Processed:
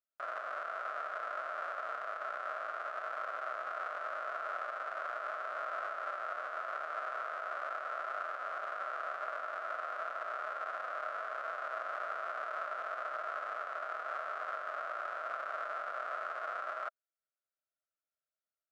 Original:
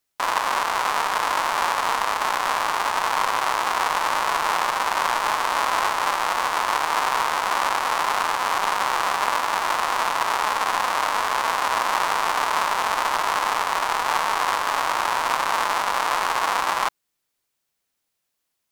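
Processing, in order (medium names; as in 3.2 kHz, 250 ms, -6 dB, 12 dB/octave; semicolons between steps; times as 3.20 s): two resonant band-passes 920 Hz, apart 1.1 oct; trim -8 dB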